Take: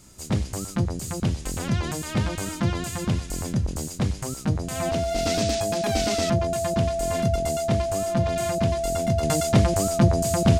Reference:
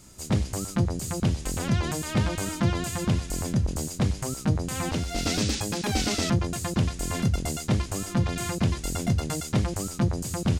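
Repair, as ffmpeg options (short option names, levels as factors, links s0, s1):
-af "bandreject=f=670:w=30,asetnsamples=n=441:p=0,asendcmd='9.23 volume volume -6dB',volume=1"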